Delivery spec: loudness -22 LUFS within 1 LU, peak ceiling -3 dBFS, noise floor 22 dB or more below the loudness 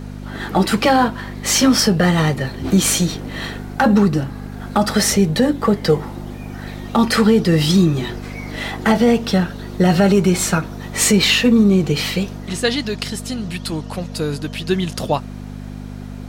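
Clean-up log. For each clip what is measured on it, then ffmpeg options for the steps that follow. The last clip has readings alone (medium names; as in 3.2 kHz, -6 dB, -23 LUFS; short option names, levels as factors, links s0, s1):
hum 50 Hz; highest harmonic 250 Hz; hum level -29 dBFS; loudness -17.0 LUFS; peak level -3.0 dBFS; loudness target -22.0 LUFS
-> -af "bandreject=f=50:t=h:w=4,bandreject=f=100:t=h:w=4,bandreject=f=150:t=h:w=4,bandreject=f=200:t=h:w=4,bandreject=f=250:t=h:w=4"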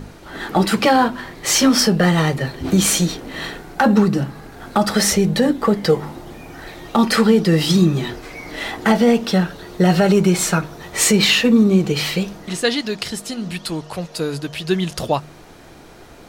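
hum not found; loudness -17.5 LUFS; peak level -3.0 dBFS; loudness target -22.0 LUFS
-> -af "volume=0.596"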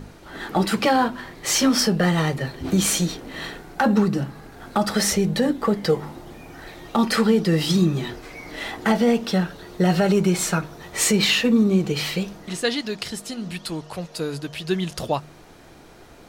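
loudness -22.0 LUFS; peak level -7.5 dBFS; noise floor -46 dBFS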